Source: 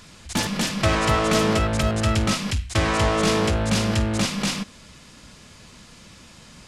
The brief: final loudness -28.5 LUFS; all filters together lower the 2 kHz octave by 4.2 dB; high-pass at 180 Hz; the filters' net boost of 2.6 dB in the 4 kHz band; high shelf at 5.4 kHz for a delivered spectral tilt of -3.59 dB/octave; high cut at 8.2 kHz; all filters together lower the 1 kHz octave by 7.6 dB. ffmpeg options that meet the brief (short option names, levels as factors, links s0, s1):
-af "highpass=180,lowpass=8200,equalizer=f=1000:t=o:g=-9,equalizer=f=2000:t=o:g=-4.5,equalizer=f=4000:t=o:g=7,highshelf=f=5400:g=-3.5,volume=0.631"